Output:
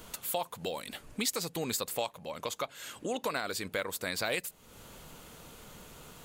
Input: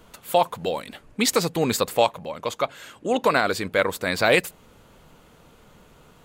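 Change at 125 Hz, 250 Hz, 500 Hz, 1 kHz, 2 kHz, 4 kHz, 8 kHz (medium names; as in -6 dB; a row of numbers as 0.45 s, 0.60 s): -12.0 dB, -12.5 dB, -14.0 dB, -14.0 dB, -12.5 dB, -8.5 dB, -5.5 dB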